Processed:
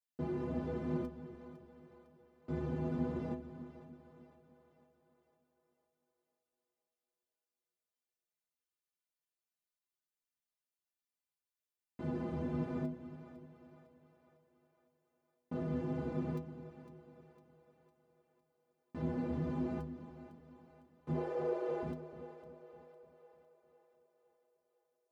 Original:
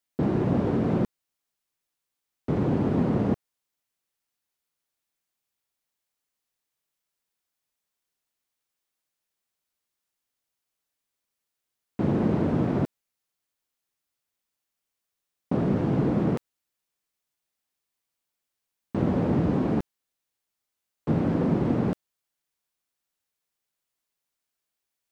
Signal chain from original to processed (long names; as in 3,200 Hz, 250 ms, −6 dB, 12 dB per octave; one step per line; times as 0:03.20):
0:21.14–0:21.83: frequency shifter +230 Hz
stiff-string resonator 74 Hz, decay 0.49 s, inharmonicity 0.03
echo with a time of its own for lows and highs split 440 Hz, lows 301 ms, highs 505 ms, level −12.5 dB
level −3 dB